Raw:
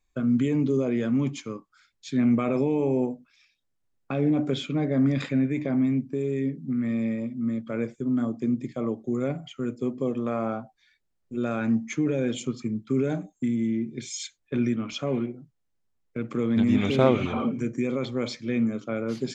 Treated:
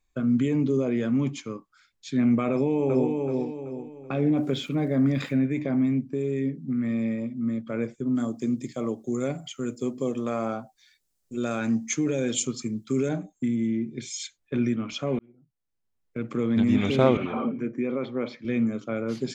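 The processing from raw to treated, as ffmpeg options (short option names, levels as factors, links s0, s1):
-filter_complex "[0:a]asplit=2[s0][s1];[s1]afade=t=in:st=2.51:d=0.01,afade=t=out:st=3.13:d=0.01,aecho=0:1:380|760|1140|1520|1900:0.668344|0.267338|0.106935|0.042774|0.0171096[s2];[s0][s2]amix=inputs=2:normalize=0,asplit=3[s3][s4][s5];[s3]afade=t=out:st=4.35:d=0.02[s6];[s4]aeval=exprs='val(0)*gte(abs(val(0)),0.00299)':c=same,afade=t=in:st=4.35:d=0.02,afade=t=out:st=5.36:d=0.02[s7];[s5]afade=t=in:st=5.36:d=0.02[s8];[s6][s7][s8]amix=inputs=3:normalize=0,asettb=1/sr,asplit=3[s9][s10][s11];[s9]atrim=end=8.154[s12];[s10]atrim=start=8.15:end=13.09,asetpts=PTS-STARTPTS,afade=t=in:d=0.004:c=qsin,afade=t=out:st=4.936:d=0.004:c=qsin,bass=f=250:g=-2,treble=f=4000:g=14[s13];[s11]atrim=start=13.086[s14];[s12][s13]acrossfade=d=0.004:c1=hsin:c2=qsin[s15];[s15][s14]acrossfade=d=0.004:c1=qsin:c2=hsin,asettb=1/sr,asplit=3[s16][s17][s18];[s16]atrim=end=17.174[s19];[s17]atrim=start=17.17:end=18.45,asetpts=PTS-STARTPTS,afade=t=in:d=0.004:c=qsin,afade=t=out:st=1.276:d=0.004:c=qsin,highpass=180,lowpass=2400[s20];[s18]atrim=start=18.446[s21];[s19][s20]acrossfade=d=0.004:c1=hsin:c2=qsin[s22];[s22][s21]acrossfade=d=0.004:c1=qsin:c2=hsin,asplit=2[s23][s24];[s23]atrim=end=15.19,asetpts=PTS-STARTPTS,afade=t=out:st=15.186:d=0.004:c=hsin[s25];[s24]atrim=start=15.19,asetpts=PTS-STARTPTS,afade=t=in:d=1.06[s26];[s25][s26]concat=n=2:v=0:a=1"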